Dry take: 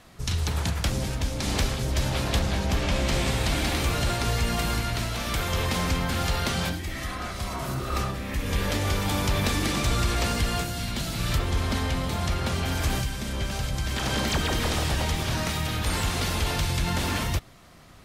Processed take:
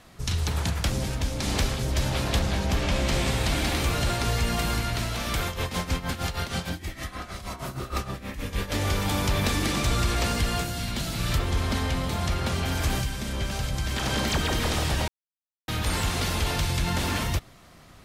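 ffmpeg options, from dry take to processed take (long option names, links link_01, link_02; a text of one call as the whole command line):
ffmpeg -i in.wav -filter_complex "[0:a]asplit=3[link_01][link_02][link_03];[link_01]afade=type=out:start_time=5.46:duration=0.02[link_04];[link_02]tremolo=f=6.4:d=0.78,afade=type=in:start_time=5.46:duration=0.02,afade=type=out:start_time=8.76:duration=0.02[link_05];[link_03]afade=type=in:start_time=8.76:duration=0.02[link_06];[link_04][link_05][link_06]amix=inputs=3:normalize=0,asplit=3[link_07][link_08][link_09];[link_07]atrim=end=15.08,asetpts=PTS-STARTPTS,afade=type=out:start_time=15.076:duration=0.004:curve=hsin[link_10];[link_08]atrim=start=15.08:end=15.68,asetpts=PTS-STARTPTS,volume=0[link_11];[link_09]atrim=start=15.68,asetpts=PTS-STARTPTS,afade=type=in:duration=0.004:curve=hsin[link_12];[link_10][link_11][link_12]concat=n=3:v=0:a=1" out.wav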